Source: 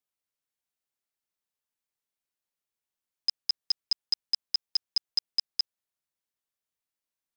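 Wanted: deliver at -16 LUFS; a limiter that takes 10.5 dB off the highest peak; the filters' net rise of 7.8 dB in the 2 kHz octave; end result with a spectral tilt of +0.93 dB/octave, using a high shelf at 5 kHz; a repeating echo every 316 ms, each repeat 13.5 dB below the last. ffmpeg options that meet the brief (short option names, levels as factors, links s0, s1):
-af "equalizer=f=2000:t=o:g=8.5,highshelf=f=5000:g=6.5,alimiter=limit=0.0668:level=0:latency=1,aecho=1:1:316|632:0.211|0.0444,volume=9.44"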